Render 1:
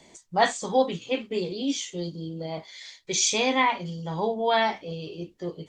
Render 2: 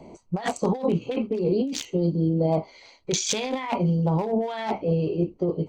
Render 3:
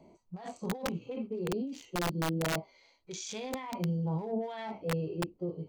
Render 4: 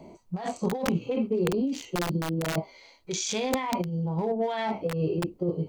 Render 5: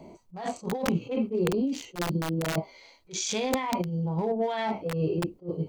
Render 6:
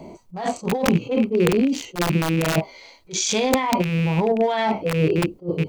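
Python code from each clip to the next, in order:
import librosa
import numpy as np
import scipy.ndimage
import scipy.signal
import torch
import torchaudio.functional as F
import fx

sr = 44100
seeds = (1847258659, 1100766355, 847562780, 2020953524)

y1 = fx.wiener(x, sr, points=25)
y1 = fx.over_compress(y1, sr, threshold_db=-33.0, ratio=-1.0)
y1 = F.gain(torch.from_numpy(y1), 8.0).numpy()
y2 = fx.hpss(y1, sr, part='percussive', gain_db=-14)
y2 = (np.mod(10.0 ** (16.0 / 20.0) * y2 + 1.0, 2.0) - 1.0) / 10.0 ** (16.0 / 20.0)
y2 = F.gain(torch.from_numpy(y2), -9.0).numpy()
y3 = fx.over_compress(y2, sr, threshold_db=-34.0, ratio=-0.5)
y3 = F.gain(torch.from_numpy(y3), 8.5).numpy()
y4 = fx.attack_slew(y3, sr, db_per_s=270.0)
y5 = fx.rattle_buzz(y4, sr, strikes_db=-32.0, level_db=-29.0)
y5 = F.gain(torch.from_numpy(y5), 8.0).numpy()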